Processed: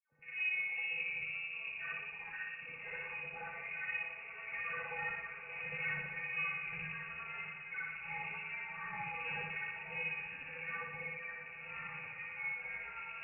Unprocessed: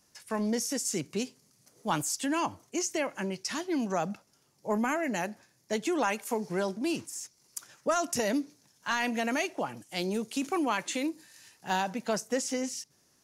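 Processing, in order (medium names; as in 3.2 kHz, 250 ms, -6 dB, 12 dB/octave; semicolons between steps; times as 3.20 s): tape start-up on the opening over 0.52 s; Doppler pass-by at 5.55 s, 16 m/s, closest 23 m; bass shelf 230 Hz -7.5 dB; waveshaping leveller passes 3; peak limiter -28 dBFS, peak gain reduction 10.5 dB; feedback comb 170 Hz, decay 0.16 s, harmonics odd, mix 100%; on a send: echo that smears into a reverb 622 ms, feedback 59%, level -10 dB; on the sum: spring tank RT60 1 s, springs 59 ms, chirp 25 ms, DRR -6.5 dB; ever faster or slower copies 244 ms, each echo -6 st, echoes 2, each echo -6 dB; frequency inversion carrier 2.7 kHz; trim -1.5 dB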